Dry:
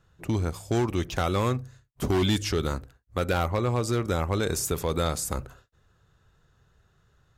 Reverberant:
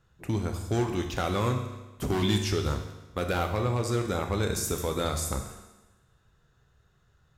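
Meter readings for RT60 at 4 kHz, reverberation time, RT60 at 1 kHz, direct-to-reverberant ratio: 1.1 s, 1.1 s, 1.1 s, 4.0 dB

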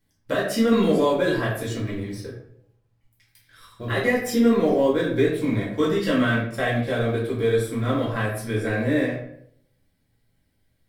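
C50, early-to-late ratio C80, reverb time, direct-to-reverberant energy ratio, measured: 4.0 dB, 7.0 dB, 0.70 s, -7.5 dB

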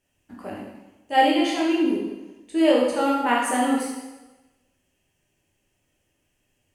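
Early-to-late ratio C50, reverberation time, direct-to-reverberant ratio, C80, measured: 1.5 dB, 1.1 s, -4.5 dB, 4.0 dB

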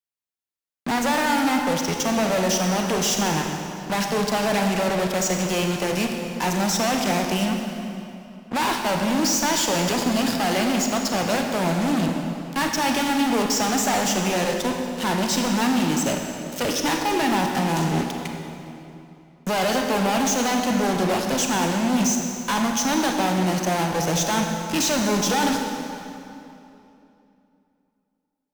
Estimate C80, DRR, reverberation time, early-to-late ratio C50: 4.0 dB, 2.5 dB, 2.9 s, 3.5 dB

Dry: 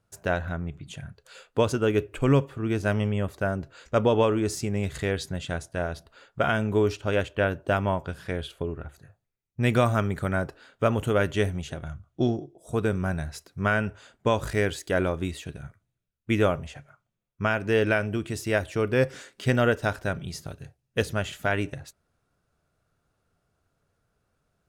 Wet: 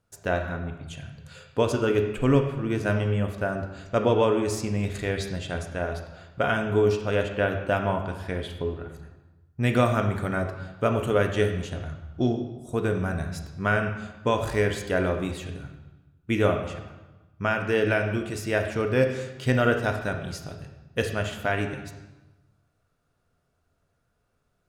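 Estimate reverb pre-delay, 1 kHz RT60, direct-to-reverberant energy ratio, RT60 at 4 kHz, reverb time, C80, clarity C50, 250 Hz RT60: 3 ms, 1.2 s, 4.0 dB, 0.95 s, 1.1 s, 9.5 dB, 7.0 dB, 1.3 s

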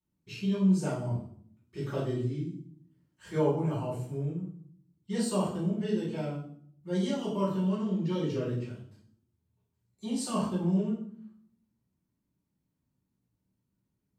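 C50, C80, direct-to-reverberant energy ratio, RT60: 3.5 dB, 8.5 dB, -10.5 dB, 0.60 s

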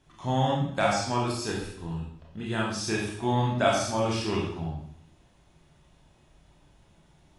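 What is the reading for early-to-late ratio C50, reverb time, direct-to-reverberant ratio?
2.5 dB, 0.70 s, -3.0 dB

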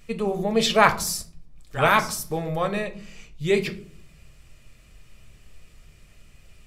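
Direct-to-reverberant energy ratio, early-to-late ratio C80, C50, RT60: 6.5 dB, 19.0 dB, 14.5 dB, 0.55 s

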